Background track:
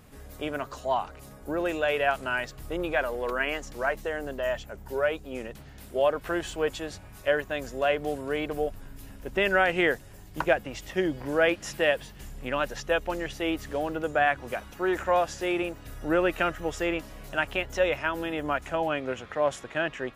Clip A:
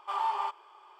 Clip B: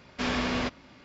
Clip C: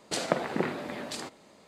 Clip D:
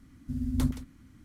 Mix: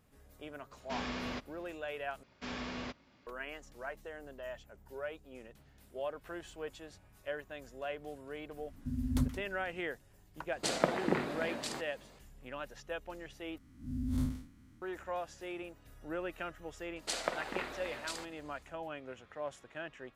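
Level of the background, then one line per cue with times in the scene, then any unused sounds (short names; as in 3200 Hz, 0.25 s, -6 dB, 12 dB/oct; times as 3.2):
background track -15 dB
0.71 add B -10.5 dB
2.23 replace with B -12.5 dB
8.57 add D -4 dB
10.52 add C -2.5 dB
13.58 replace with D -3.5 dB + time blur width 0.11 s
16.96 add C -3.5 dB + HPF 920 Hz 6 dB/oct
not used: A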